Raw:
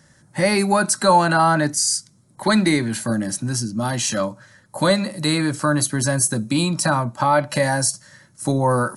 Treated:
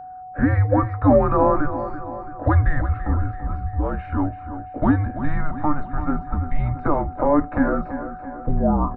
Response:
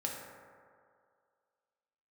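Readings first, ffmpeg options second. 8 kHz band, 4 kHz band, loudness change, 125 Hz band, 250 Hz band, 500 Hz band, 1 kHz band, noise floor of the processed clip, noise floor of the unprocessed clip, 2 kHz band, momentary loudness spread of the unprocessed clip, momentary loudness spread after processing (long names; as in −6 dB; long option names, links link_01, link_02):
below −40 dB, below −35 dB, −2.5 dB, +1.5 dB, −1.0 dB, −1.5 dB, −3.5 dB, −37 dBFS, −56 dBFS, −9.0 dB, 7 LU, 12 LU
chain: -filter_complex "[0:a]lowshelf=frequency=500:gain=8.5,highpass=frequency=210:width_type=q:width=0.5412,highpass=frequency=210:width_type=q:width=1.307,lowpass=frequency=2100:width_type=q:width=0.5176,lowpass=frequency=2100:width_type=q:width=0.7071,lowpass=frequency=2100:width_type=q:width=1.932,afreqshift=-300,flanger=delay=2.8:depth=1:regen=-87:speed=1.7:shape=triangular,asplit=2[link_01][link_02];[link_02]aecho=0:1:335|670|1005|1340|1675|2010:0.266|0.138|0.0719|0.0374|0.0195|0.0101[link_03];[link_01][link_03]amix=inputs=2:normalize=0,aeval=exprs='val(0)+0.0158*sin(2*PI*740*n/s)':channel_layout=same,volume=1.5dB"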